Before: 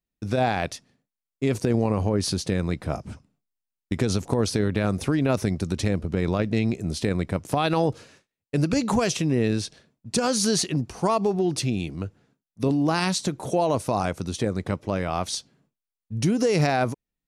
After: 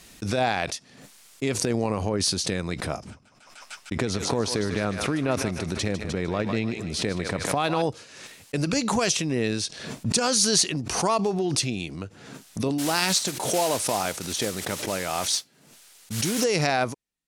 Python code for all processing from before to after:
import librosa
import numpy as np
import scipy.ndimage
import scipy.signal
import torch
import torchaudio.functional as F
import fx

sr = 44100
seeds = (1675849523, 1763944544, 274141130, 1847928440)

y = fx.chain(x, sr, fx.high_shelf(hz=3400.0, db=-9.5),
    fx.echo_thinned(ms=151, feedback_pct=55, hz=810.0, wet_db=-7.5), at=(3.1, 7.82))
y = fx.chain(y, sr, fx.low_shelf(hz=170.0, db=-6.0),
    fx.notch(hz=1100.0, q=11.0),
    fx.mod_noise(seeds[0], snr_db=11), at=(12.78, 16.44))
y = scipy.signal.sosfilt(scipy.signal.butter(2, 9800.0, 'lowpass', fs=sr, output='sos'), y)
y = fx.tilt_eq(y, sr, slope=2.0)
y = fx.pre_swell(y, sr, db_per_s=53.0)